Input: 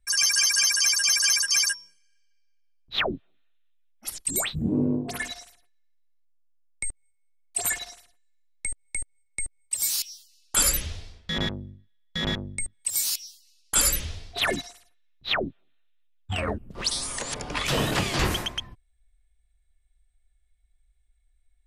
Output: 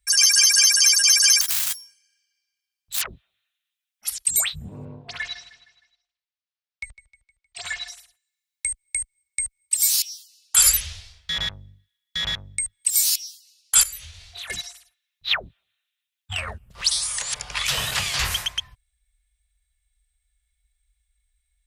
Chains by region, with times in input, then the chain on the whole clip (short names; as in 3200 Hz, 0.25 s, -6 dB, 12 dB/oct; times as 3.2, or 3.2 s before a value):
1.41–3.08 self-modulated delay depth 0.92 ms + compressor 3:1, threshold -27 dBFS
4.85–7.88 LPF 4800 Hz 24 dB/oct + feedback echo 0.155 s, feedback 49%, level -16.5 dB
13.83–14.5 notch 5200 Hz, Q 13 + compressor 16:1, threshold -37 dBFS + doubler 24 ms -6 dB
whole clip: HPF 46 Hz; passive tone stack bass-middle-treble 10-0-10; gain +7 dB